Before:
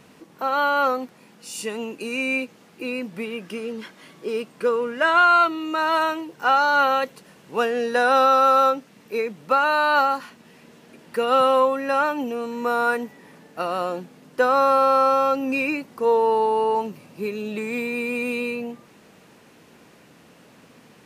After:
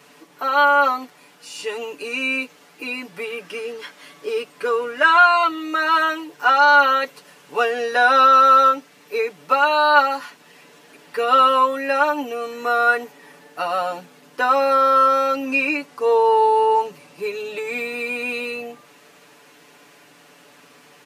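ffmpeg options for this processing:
ffmpeg -i in.wav -filter_complex "[0:a]asettb=1/sr,asplit=3[link_01][link_02][link_03];[link_01]atrim=end=15.434[link_04];[link_02]atrim=start=15.43:end=17.57,asetpts=PTS-STARTPTS,afade=type=in:duration=0.004:curve=qsin,afade=type=out:start_time=2.136:duration=0.004:curve=qsin,lowpass=12000[link_05];[link_03]atrim=start=17.566[link_06];[link_04][link_05]acrossfade=duration=0.004:curve1=hsin:curve2=qsin[link_07];[link_07][link_06]acrossfade=duration=0.004:curve1=qsin:curve2=hsin,acrossover=split=5200[link_08][link_09];[link_09]acompressor=threshold=-50dB:ratio=4:attack=1:release=60[link_10];[link_08][link_10]amix=inputs=2:normalize=0,highpass=frequency=650:poles=1,aecho=1:1:6.9:0.97,volume=2.5dB" out.wav

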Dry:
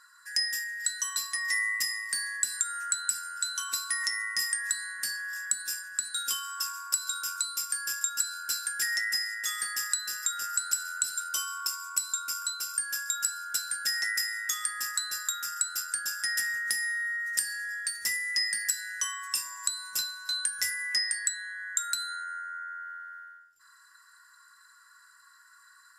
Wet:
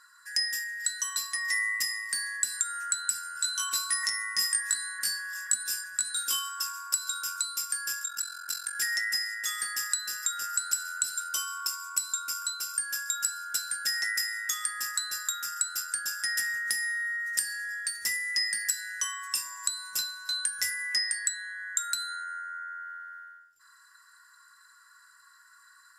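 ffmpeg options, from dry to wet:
ffmpeg -i in.wav -filter_complex "[0:a]asettb=1/sr,asplit=3[link_01][link_02][link_03];[link_01]atrim=end=3.334[link_04];[link_02]atrim=start=3.33:end=6.49,asetpts=PTS-STARTPTS,afade=type=in:duration=0.004:curve=qsin,afade=type=out:start_time=3.156:duration=0.004:curve=qsin,asplit=2[link_05][link_06];[link_06]adelay=19,volume=-2dB[link_07];[link_05][link_07]amix=inputs=2:normalize=0,atrim=end_sample=139356[link_08];[link_03]atrim=start=6.486[link_09];[link_04][link_08]acrossfade=duration=0.004:curve1=hsin:curve2=qsin[link_10];[link_10][link_09]acrossfade=duration=0.004:curve1=qsin:curve2=hsin,asettb=1/sr,asplit=3[link_11][link_12][link_13];[link_11]atrim=end=8.024[link_14];[link_12]atrim=start=8.02:end=8.75,asetpts=PTS-STARTPTS,afade=type=in:duration=0.004:curve=qsin,afade=type=out:start_time=0.726:duration=0.004:curve=qsin,aeval=exprs='val(0)*sin(2*PI*22*n/s)':channel_layout=same[link_15];[link_13]atrim=start=8.746[link_16];[link_14][link_15]acrossfade=duration=0.004:curve1=hsin:curve2=qsin[link_17];[link_17][link_16]acrossfade=duration=0.004:curve1=qsin:curve2=hsin" out.wav

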